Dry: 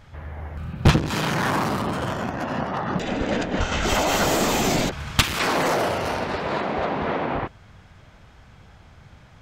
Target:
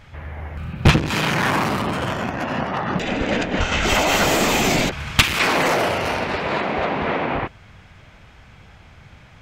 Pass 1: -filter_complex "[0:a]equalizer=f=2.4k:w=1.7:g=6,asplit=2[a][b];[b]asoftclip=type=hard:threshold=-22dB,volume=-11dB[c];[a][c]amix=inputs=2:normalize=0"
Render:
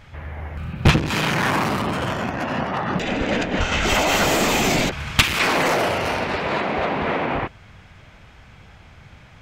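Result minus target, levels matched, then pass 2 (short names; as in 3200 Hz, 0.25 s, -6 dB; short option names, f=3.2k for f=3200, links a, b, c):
hard clip: distortion +14 dB
-filter_complex "[0:a]equalizer=f=2.4k:w=1.7:g=6,asplit=2[a][b];[b]asoftclip=type=hard:threshold=-11dB,volume=-11dB[c];[a][c]amix=inputs=2:normalize=0"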